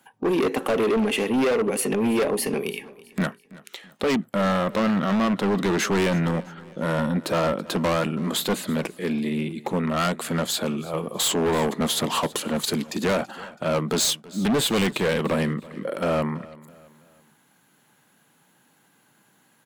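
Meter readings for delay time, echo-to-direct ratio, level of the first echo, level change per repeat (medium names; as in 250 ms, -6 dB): 329 ms, -19.5 dB, -20.5 dB, -7.5 dB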